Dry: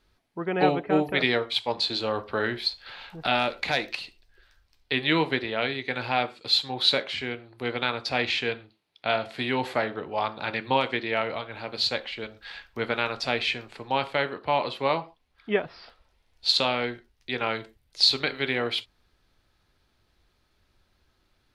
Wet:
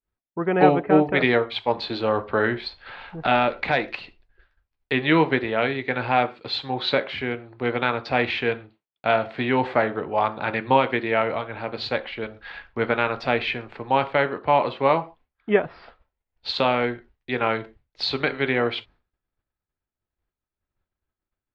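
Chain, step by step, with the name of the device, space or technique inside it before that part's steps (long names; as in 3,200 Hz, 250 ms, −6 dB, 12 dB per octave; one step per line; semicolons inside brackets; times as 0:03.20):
hearing-loss simulation (low-pass filter 2,100 Hz 12 dB per octave; downward expander −52 dBFS)
level +6 dB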